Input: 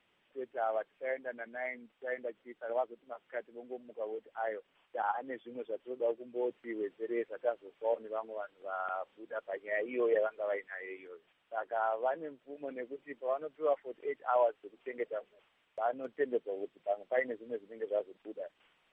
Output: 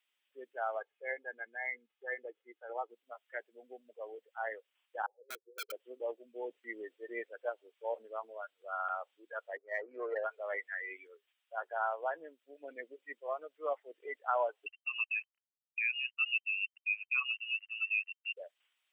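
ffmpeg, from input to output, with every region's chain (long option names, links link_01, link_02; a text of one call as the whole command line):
ffmpeg -i in.wav -filter_complex "[0:a]asettb=1/sr,asplit=3[link_01][link_02][link_03];[link_01]atrim=end=0.794[link_04];[link_02]atrim=start=0.79:end=2.9,asetpts=PTS-STARTPTS,afade=type=in:duration=0.004:curve=qsin,afade=type=out:start_time=2.106:duration=0.004:curve=qsin,highshelf=frequency=2500:gain=-9.5,aecho=1:1:2.4:0.48,atrim=end_sample=93051[link_05];[link_03]atrim=start=2.896[link_06];[link_04][link_05]acrossfade=duration=0.004:curve1=hsin:curve2=qsin[link_07];[link_07][link_06]acrossfade=duration=0.004:curve1=qsin:curve2=hsin,asettb=1/sr,asplit=3[link_08][link_09][link_10];[link_08]atrim=end=5.064[link_11];[link_09]atrim=start=5.06:end=5.72,asetpts=PTS-STARTPTS,afade=type=in:duration=0.004:curve=qsin,afade=type=out:start_time=0.656:duration=0.004:curve=qsin,asuperpass=centerf=440:order=8:qfactor=2.6,aeval=exprs='(mod(84.1*val(0)+1,2)-1)/84.1':channel_layout=same[link_12];[link_10]atrim=start=5.716[link_13];[link_11][link_12]acrossfade=duration=0.004:curve1=hsin:curve2=qsin[link_14];[link_14][link_13]acrossfade=duration=0.004:curve1=qsin:curve2=hsin,asettb=1/sr,asplit=3[link_15][link_16][link_17];[link_15]atrim=end=9.574[link_18];[link_16]atrim=start=9.57:end=10.24,asetpts=PTS-STARTPTS,afade=type=in:duration=0.004:curve=qsin,afade=type=out:start_time=0.666:duration=0.004:curve=qsin,adynamicsmooth=sensitivity=3.5:basefreq=650,acrossover=split=300 2200:gain=0.178 1 0.0794[link_19][link_20][link_21];[link_19][link_20][link_21]amix=inputs=3:normalize=0[link_22];[link_17]atrim=start=10.236[link_23];[link_18][link_22]acrossfade=duration=0.004:curve1=hsin:curve2=qsin[link_24];[link_24][link_23]acrossfade=duration=0.004:curve1=qsin:curve2=hsin,asettb=1/sr,asplit=3[link_25][link_26][link_27];[link_25]atrim=end=14.664[link_28];[link_26]atrim=start=14.66:end=18.37,asetpts=PTS-STARTPTS,afade=type=in:duration=0.004:curve=qsin,afade=type=out:start_time=3.706:duration=0.004:curve=qsin,acompressor=threshold=-42dB:ratio=2:attack=3.2:release=140:knee=1:detection=peak,aeval=exprs='val(0)*gte(abs(val(0)),0.00178)':channel_layout=same,lowpass=frequency=2600:width_type=q:width=0.5098,lowpass=frequency=2600:width_type=q:width=0.6013,lowpass=frequency=2600:width_type=q:width=0.9,lowpass=frequency=2600:width_type=q:width=2.563,afreqshift=-3100[link_29];[link_27]atrim=start=18.366[link_30];[link_28][link_29]acrossfade=duration=0.004:curve1=hsin:curve2=qsin[link_31];[link_31][link_30]acrossfade=duration=0.004:curve1=qsin:curve2=hsin,afftdn=noise_reduction=16:noise_floor=-44,aderivative,volume=16.5dB" out.wav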